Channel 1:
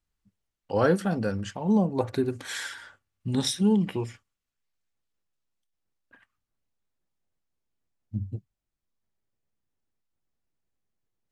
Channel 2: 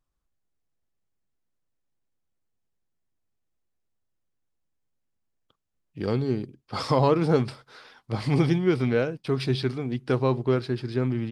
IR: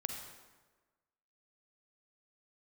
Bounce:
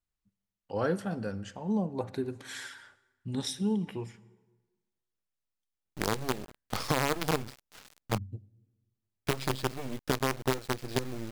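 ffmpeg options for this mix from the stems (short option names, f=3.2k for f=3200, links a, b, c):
-filter_complex "[0:a]volume=-9dB,asplit=2[a][b];[b]volume=-12dB[c];[1:a]acompressor=threshold=-30dB:ratio=4,aeval=exprs='sgn(val(0))*max(abs(val(0))-0.00237,0)':c=same,acrusher=bits=5:dc=4:mix=0:aa=0.000001,volume=2.5dB,asplit=3[d][e][f];[d]atrim=end=8.18,asetpts=PTS-STARTPTS,afade=t=out:st=8.176:d=0.004:c=hsin[g];[e]atrim=start=8.18:end=9.27,asetpts=PTS-STARTPTS,volume=0[h];[f]atrim=start=9.27,asetpts=PTS-STARTPTS,afade=t=in:d=0.004:c=hsin[i];[g][h][i]concat=n=3:v=0:a=1[j];[2:a]atrim=start_sample=2205[k];[c][k]afir=irnorm=-1:irlink=0[l];[a][j][l]amix=inputs=3:normalize=0"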